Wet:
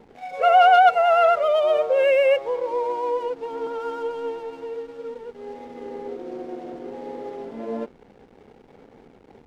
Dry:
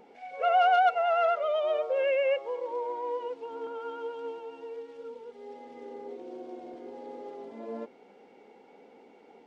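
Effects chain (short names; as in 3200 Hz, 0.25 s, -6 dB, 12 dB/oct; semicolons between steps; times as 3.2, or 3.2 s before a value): bell 150 Hz +10.5 dB 0.43 oct; backlash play -48.5 dBFS; gain +8.5 dB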